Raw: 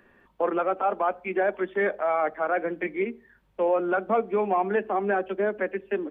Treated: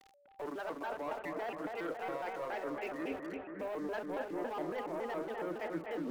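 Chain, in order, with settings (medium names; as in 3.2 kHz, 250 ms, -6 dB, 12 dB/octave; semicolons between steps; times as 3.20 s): peaking EQ 150 Hz -5 dB 1.3 oct; waveshaping leveller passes 2; reverse; compression 20:1, threshold -40 dBFS, peak gain reduction 24 dB; reverse; small samples zeroed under -55.5 dBFS; whistle 680 Hz -66 dBFS; on a send: bucket-brigade echo 247 ms, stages 4096, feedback 68%, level -4 dB; on the sum: vibrato with a chosen wave square 3.6 Hz, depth 250 cents; trim +1.5 dB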